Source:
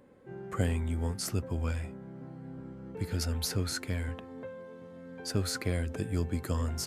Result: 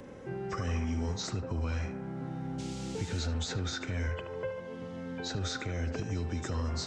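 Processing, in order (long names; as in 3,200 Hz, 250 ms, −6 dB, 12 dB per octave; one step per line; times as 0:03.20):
hearing-aid frequency compression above 2,700 Hz 1.5 to 1
0:04.06–0:04.60: comb filter 2 ms, depth 90%
in parallel at −2 dB: downward compressor, threshold −41 dBFS, peak gain reduction 17 dB
on the sum: brickwall limiter −25.5 dBFS, peak gain reduction 11.5 dB
0:00.61–0:01.09: flutter between parallel walls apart 9.8 metres, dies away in 0.45 s
0:02.58–0:03.26: noise in a band 2,000–7,700 Hz −53 dBFS
feedback echo with a band-pass in the loop 74 ms, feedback 68%, band-pass 880 Hz, level −6 dB
multiband upward and downward compressor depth 40%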